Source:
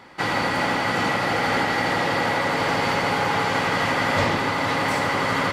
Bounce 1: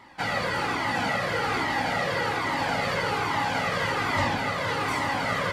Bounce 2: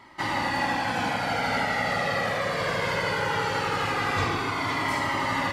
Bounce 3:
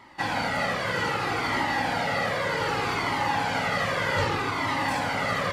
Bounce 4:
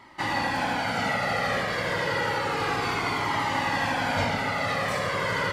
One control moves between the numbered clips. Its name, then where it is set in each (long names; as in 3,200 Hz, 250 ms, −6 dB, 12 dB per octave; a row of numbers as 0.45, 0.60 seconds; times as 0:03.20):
flanger whose copies keep moving one way, speed: 1.2, 0.2, 0.64, 0.3 Hertz